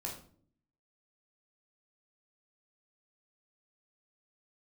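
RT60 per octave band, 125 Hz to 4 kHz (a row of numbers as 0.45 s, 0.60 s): 0.85 s, 0.85 s, 0.60 s, 0.45 s, 0.35 s, 0.35 s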